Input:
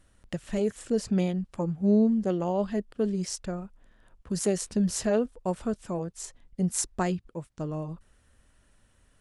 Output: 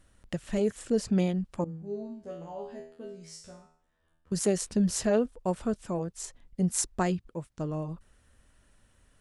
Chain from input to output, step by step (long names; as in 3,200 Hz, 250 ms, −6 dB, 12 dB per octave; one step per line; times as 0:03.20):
0:01.64–0:04.32: tuned comb filter 81 Hz, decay 0.55 s, harmonics all, mix 100%